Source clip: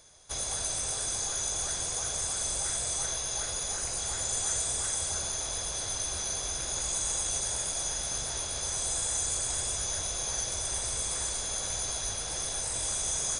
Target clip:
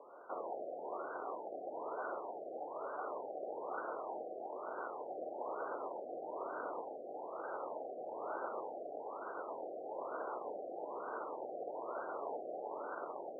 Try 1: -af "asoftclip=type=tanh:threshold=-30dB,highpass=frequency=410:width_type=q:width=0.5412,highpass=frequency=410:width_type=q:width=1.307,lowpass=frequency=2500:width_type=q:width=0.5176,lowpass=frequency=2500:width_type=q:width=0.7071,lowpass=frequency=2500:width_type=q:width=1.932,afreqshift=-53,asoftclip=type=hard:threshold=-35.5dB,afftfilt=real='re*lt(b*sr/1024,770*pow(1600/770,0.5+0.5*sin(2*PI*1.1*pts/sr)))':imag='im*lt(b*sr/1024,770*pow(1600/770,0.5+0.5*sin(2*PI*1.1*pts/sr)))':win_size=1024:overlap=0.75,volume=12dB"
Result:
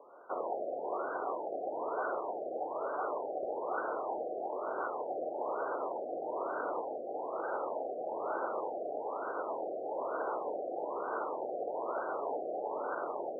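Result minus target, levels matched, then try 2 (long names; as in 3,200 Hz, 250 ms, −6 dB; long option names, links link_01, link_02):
soft clipping: distortion −7 dB
-af "asoftclip=type=tanh:threshold=-40.5dB,highpass=frequency=410:width_type=q:width=0.5412,highpass=frequency=410:width_type=q:width=1.307,lowpass=frequency=2500:width_type=q:width=0.5176,lowpass=frequency=2500:width_type=q:width=0.7071,lowpass=frequency=2500:width_type=q:width=1.932,afreqshift=-53,asoftclip=type=hard:threshold=-35.5dB,afftfilt=real='re*lt(b*sr/1024,770*pow(1600/770,0.5+0.5*sin(2*PI*1.1*pts/sr)))':imag='im*lt(b*sr/1024,770*pow(1600/770,0.5+0.5*sin(2*PI*1.1*pts/sr)))':win_size=1024:overlap=0.75,volume=12dB"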